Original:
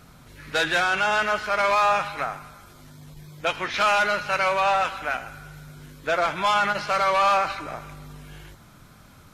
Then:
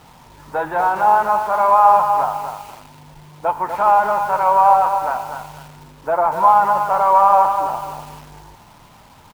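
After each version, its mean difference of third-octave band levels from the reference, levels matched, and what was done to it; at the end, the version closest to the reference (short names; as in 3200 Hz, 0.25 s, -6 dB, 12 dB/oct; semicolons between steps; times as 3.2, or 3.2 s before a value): 7.5 dB: synth low-pass 910 Hz, resonance Q 7.8; requantised 8-bit, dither none; outdoor echo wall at 42 m, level -22 dB; lo-fi delay 0.247 s, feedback 35%, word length 6-bit, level -7 dB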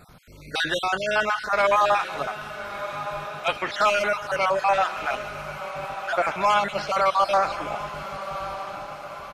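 6.0 dB: random spectral dropouts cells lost 38%; bell 580 Hz +3.5 dB 1.3 oct; diffused feedback echo 1.249 s, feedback 56%, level -11 dB; downsampling 32000 Hz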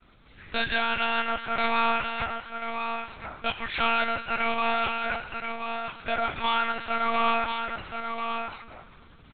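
10.5 dB: high shelf 2500 Hz +8 dB; echo 1.033 s -6.5 dB; monotone LPC vocoder at 8 kHz 230 Hz; expander -46 dBFS; gain -6 dB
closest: second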